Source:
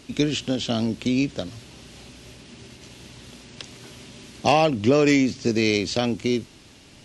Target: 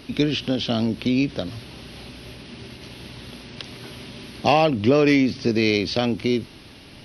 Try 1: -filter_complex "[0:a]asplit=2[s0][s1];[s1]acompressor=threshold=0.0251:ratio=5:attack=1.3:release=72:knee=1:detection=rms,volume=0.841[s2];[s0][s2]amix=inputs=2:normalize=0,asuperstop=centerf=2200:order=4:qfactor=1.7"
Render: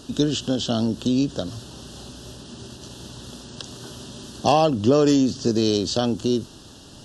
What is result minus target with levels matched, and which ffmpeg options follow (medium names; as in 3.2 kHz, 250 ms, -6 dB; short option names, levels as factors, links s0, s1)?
2 kHz band -10.5 dB
-filter_complex "[0:a]asplit=2[s0][s1];[s1]acompressor=threshold=0.0251:ratio=5:attack=1.3:release=72:knee=1:detection=rms,volume=0.841[s2];[s0][s2]amix=inputs=2:normalize=0,asuperstop=centerf=7300:order=4:qfactor=1.7"